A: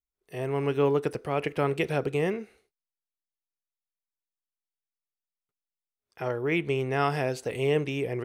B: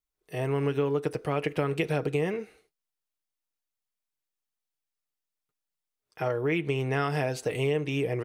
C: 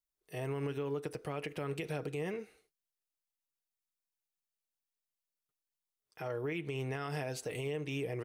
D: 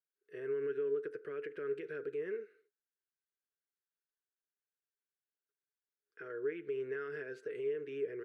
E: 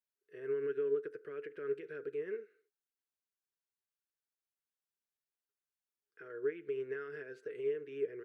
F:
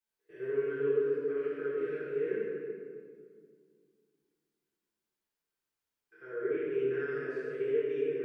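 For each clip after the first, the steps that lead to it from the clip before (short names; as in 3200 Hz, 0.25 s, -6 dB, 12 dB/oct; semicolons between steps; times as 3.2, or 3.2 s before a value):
comb 6.5 ms, depth 37%; compressor, threshold -26 dBFS, peak gain reduction 8.5 dB; gain +2.5 dB
high shelf 4500 Hz +5.5 dB; limiter -21 dBFS, peak gain reduction 7 dB; gain -7.5 dB
double band-pass 800 Hz, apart 1.9 oct; gain +5 dB
upward expander 1.5:1, over -44 dBFS; gain +2.5 dB
stepped spectrum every 0.1 s; reverb RT60 2.2 s, pre-delay 3 ms, DRR -12 dB; gain -4 dB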